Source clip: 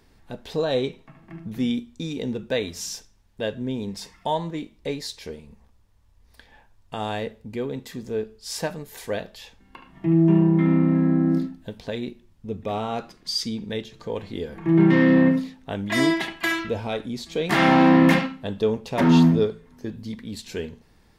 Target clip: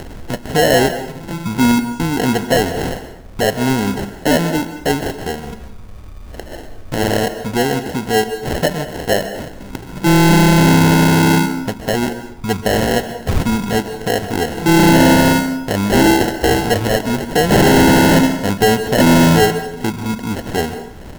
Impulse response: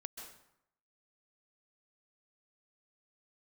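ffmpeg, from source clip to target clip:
-filter_complex "[0:a]acrusher=samples=37:mix=1:aa=0.000001,asoftclip=type=hard:threshold=-20dB,acompressor=mode=upward:threshold=-31dB:ratio=2.5,asplit=2[link_01][link_02];[1:a]atrim=start_sample=2205[link_03];[link_02][link_03]afir=irnorm=-1:irlink=0,volume=2dB[link_04];[link_01][link_04]amix=inputs=2:normalize=0,volume=7.5dB"

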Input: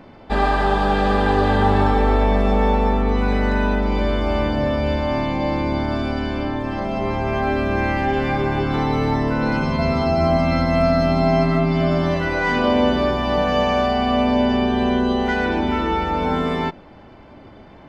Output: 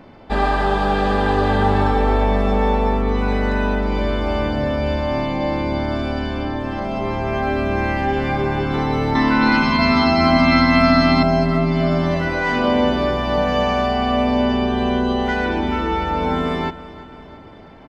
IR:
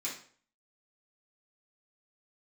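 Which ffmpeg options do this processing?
-filter_complex "[0:a]asettb=1/sr,asplit=3[link_01][link_02][link_03];[link_01]atrim=end=9.154[link_04];[link_02]atrim=start=9.15:end=11.23,asetpts=PTS-STARTPTS,afade=type=in:duration=0.004:curve=qsin,afade=type=out:start_time=2.076:duration=0.004:curve=qsin,equalizer=frequency=125:width_type=o:width=1:gain=-8,equalizer=frequency=250:width_type=o:width=1:gain=10,equalizer=frequency=500:width_type=o:width=1:gain=-9,equalizer=frequency=1000:width_type=o:width=1:gain=8,equalizer=frequency=2000:width_type=o:width=1:gain=7,equalizer=frequency=4000:width_type=o:width=1:gain=10[link_05];[link_03]atrim=start=11.226[link_06];[link_04][link_05]acrossfade=duration=0.004:curve1=hsin:curve2=qsin[link_07];[link_07][link_06]acrossfade=duration=0.004:curve1=qsin:curve2=hsin,aecho=1:1:337|674|1011|1348|1685:0.133|0.0773|0.0449|0.026|0.0151"

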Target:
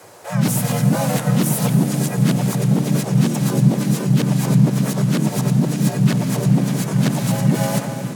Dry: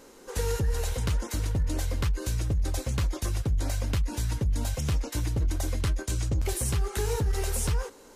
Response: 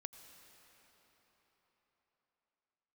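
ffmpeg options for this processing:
-filter_complex "[0:a]areverse[link_01];[1:a]atrim=start_sample=2205,asetrate=24255,aresample=44100[link_02];[link_01][link_02]afir=irnorm=-1:irlink=0,afreqshift=81,asplit=3[link_03][link_04][link_05];[link_04]asetrate=52444,aresample=44100,atempo=0.840896,volume=-2dB[link_06];[link_05]asetrate=66075,aresample=44100,atempo=0.66742,volume=-2dB[link_07];[link_03][link_06][link_07]amix=inputs=3:normalize=0,volume=7dB"

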